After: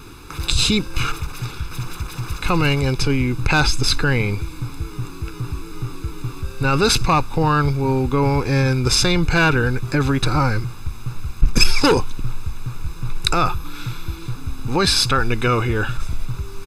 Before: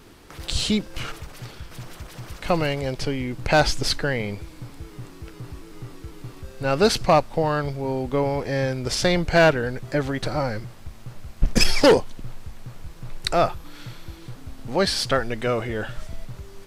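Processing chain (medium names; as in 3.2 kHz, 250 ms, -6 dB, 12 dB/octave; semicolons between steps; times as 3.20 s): peaking EQ 210 Hz -6.5 dB 0.44 oct; comb 0.8 ms, depth 80%; in parallel at -1.5 dB: compressor with a negative ratio -22 dBFS, ratio -0.5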